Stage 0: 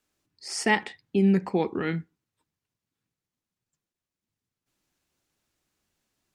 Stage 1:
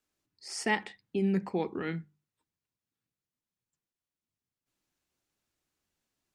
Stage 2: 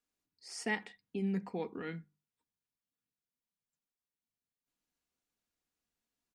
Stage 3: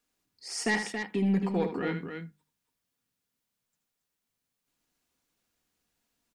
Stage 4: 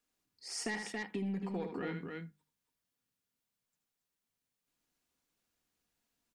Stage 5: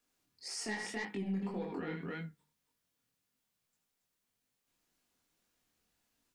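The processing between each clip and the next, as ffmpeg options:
ffmpeg -i in.wav -af "bandreject=frequency=50:width_type=h:width=6,bandreject=frequency=100:width_type=h:width=6,bandreject=frequency=150:width_type=h:width=6,bandreject=frequency=200:width_type=h:width=6,volume=-6dB" out.wav
ffmpeg -i in.wav -af "aecho=1:1:4.2:0.35,volume=-7dB" out.wav
ffmpeg -i in.wav -af "aeval=exprs='0.0944*sin(PI/2*1.78*val(0)/0.0944)':channel_layout=same,aecho=1:1:75.8|277:0.355|0.447" out.wav
ffmpeg -i in.wav -af "acompressor=threshold=-30dB:ratio=6,volume=-4.5dB" out.wav
ffmpeg -i in.wav -af "alimiter=level_in=12dB:limit=-24dB:level=0:latency=1:release=79,volume=-12dB,flanger=delay=19.5:depth=6.7:speed=1.8,volume=7dB" out.wav

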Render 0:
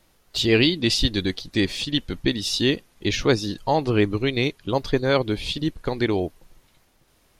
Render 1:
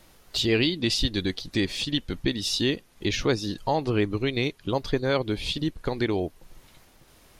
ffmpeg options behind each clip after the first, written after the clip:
ffmpeg -i in.wav -af "acompressor=threshold=-45dB:ratio=1.5,volume=6dB" out.wav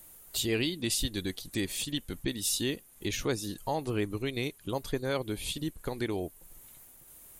ffmpeg -i in.wav -af "aexciter=amount=8.1:drive=4:freq=7200,volume=-7dB" out.wav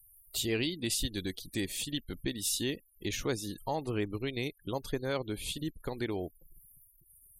ffmpeg -i in.wav -af "afftfilt=real='re*gte(hypot(re,im),0.00355)':imag='im*gte(hypot(re,im),0.00355)':win_size=1024:overlap=0.75,volume=-2dB" out.wav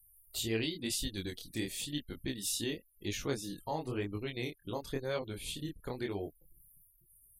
ffmpeg -i in.wav -af "flanger=delay=19.5:depth=7.6:speed=0.96" out.wav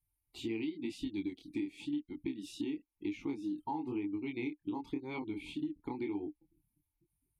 ffmpeg -i in.wav -filter_complex "[0:a]asplit=3[link_01][link_02][link_03];[link_01]bandpass=frequency=300:width_type=q:width=8,volume=0dB[link_04];[link_02]bandpass=frequency=870:width_type=q:width=8,volume=-6dB[link_05];[link_03]bandpass=frequency=2240:width_type=q:width=8,volume=-9dB[link_06];[link_04][link_05][link_06]amix=inputs=3:normalize=0,lowshelf=frequency=83:gain=10,acompressor=threshold=-47dB:ratio=10,volume=13.5dB" out.wav

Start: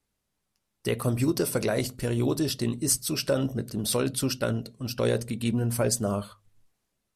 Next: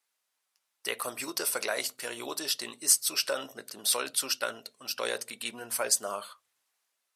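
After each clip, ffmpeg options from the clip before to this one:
ffmpeg -i in.wav -af "highpass=900,volume=2.5dB" out.wav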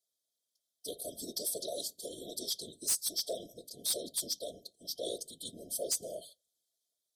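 ffmpeg -i in.wav -af "afftfilt=real='hypot(re,im)*cos(2*PI*random(0))':imag='hypot(re,im)*sin(2*PI*random(1))':win_size=512:overlap=0.75,afftfilt=real='re*(1-between(b*sr/4096,720,3100))':imag='im*(1-between(b*sr/4096,720,3100))':win_size=4096:overlap=0.75,asoftclip=type=hard:threshold=-27.5dB,volume=1.5dB" out.wav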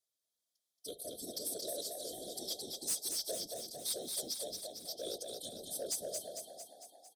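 ffmpeg -i in.wav -filter_complex "[0:a]aeval=exprs='0.0531*(cos(1*acos(clip(val(0)/0.0531,-1,1)))-cos(1*PI/2))+0.00299*(cos(5*acos(clip(val(0)/0.0531,-1,1)))-cos(5*PI/2))+0.000335*(cos(6*acos(clip(val(0)/0.0531,-1,1)))-cos(6*PI/2))+0.000422*(cos(7*acos(clip(val(0)/0.0531,-1,1)))-cos(7*PI/2))+0.000335*(cos(8*acos(clip(val(0)/0.0531,-1,1)))-cos(8*PI/2))':channel_layout=same,asplit=2[link_01][link_02];[link_02]asplit=8[link_03][link_04][link_05][link_06][link_07][link_08][link_09][link_10];[link_03]adelay=226,afreqshift=30,volume=-4.5dB[link_11];[link_04]adelay=452,afreqshift=60,volume=-9.1dB[link_12];[link_05]adelay=678,afreqshift=90,volume=-13.7dB[link_13];[link_06]adelay=904,afreqshift=120,volume=-18.2dB[link_14];[link_07]adelay=1130,afreqshift=150,volume=-22.8dB[link_15];[link_08]adelay=1356,afreqshift=180,volume=-27.4dB[link_16];[link_09]adelay=1582,afreqshift=210,volume=-32dB[link_17];[link_10]adelay=1808,afreqshift=240,volume=-36.6dB[link_18];[link_11][link_12][link_13][link_14][link_15][link_16][link_17][link_18]amix=inputs=8:normalize=0[link_19];[link_01][link_19]amix=inputs=2:normalize=0,volume=-5dB" out.wav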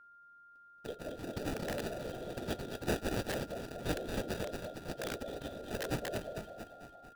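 ffmpeg -i in.wav -filter_complex "[0:a]acrossover=split=240|2900[link_01][link_02][link_03];[link_02]aeval=exprs='(mod(59.6*val(0)+1,2)-1)/59.6':channel_layout=same[link_04];[link_03]acrusher=samples=41:mix=1:aa=0.000001[link_05];[link_01][link_04][link_05]amix=inputs=3:normalize=0,aeval=exprs='val(0)+0.00112*sin(2*PI*1400*n/s)':channel_layout=same,volume=3dB" out.wav

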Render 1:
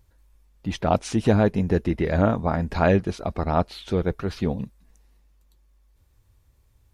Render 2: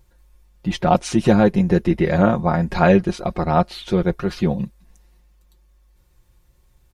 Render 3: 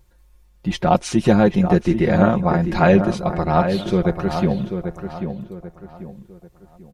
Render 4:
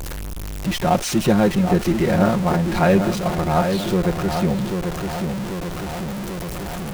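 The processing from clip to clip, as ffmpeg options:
ffmpeg -i in.wav -af "aecho=1:1:5.6:0.65,volume=3.5dB" out.wav
ffmpeg -i in.wav -filter_complex "[0:a]asplit=2[link_01][link_02];[link_02]adelay=790,lowpass=frequency=2200:poles=1,volume=-7.5dB,asplit=2[link_03][link_04];[link_04]adelay=790,lowpass=frequency=2200:poles=1,volume=0.36,asplit=2[link_05][link_06];[link_06]adelay=790,lowpass=frequency=2200:poles=1,volume=0.36,asplit=2[link_07][link_08];[link_08]adelay=790,lowpass=frequency=2200:poles=1,volume=0.36[link_09];[link_01][link_03][link_05][link_07][link_09]amix=inputs=5:normalize=0" out.wav
ffmpeg -i in.wav -af "aeval=exprs='val(0)+0.5*0.106*sgn(val(0))':channel_layout=same,volume=-3.5dB" out.wav

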